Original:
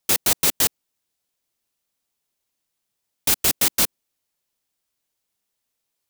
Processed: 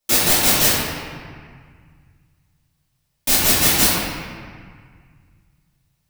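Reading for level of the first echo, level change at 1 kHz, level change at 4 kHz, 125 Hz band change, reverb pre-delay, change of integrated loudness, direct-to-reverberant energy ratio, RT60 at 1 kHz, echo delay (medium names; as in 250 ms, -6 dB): no echo, +8.0 dB, +6.0 dB, +10.5 dB, 3 ms, +4.0 dB, -11.5 dB, 1.9 s, no echo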